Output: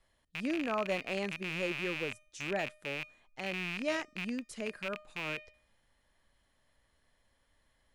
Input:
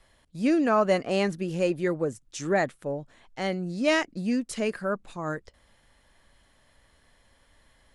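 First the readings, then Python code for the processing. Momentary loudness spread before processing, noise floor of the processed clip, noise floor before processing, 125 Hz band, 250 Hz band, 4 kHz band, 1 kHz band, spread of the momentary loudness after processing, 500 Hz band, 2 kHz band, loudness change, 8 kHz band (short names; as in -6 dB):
12 LU, -74 dBFS, -64 dBFS, -11.0 dB, -11.5 dB, -4.0 dB, -10.5 dB, 7 LU, -11.0 dB, -4.0 dB, -9.0 dB, -10.0 dB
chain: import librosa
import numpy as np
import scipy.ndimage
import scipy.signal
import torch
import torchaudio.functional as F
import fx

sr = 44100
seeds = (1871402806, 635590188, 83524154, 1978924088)

y = fx.rattle_buzz(x, sr, strikes_db=-42.0, level_db=-15.0)
y = fx.comb_fb(y, sr, f0_hz=610.0, decay_s=0.54, harmonics='all', damping=0.0, mix_pct=50)
y = F.gain(torch.from_numpy(y), -5.5).numpy()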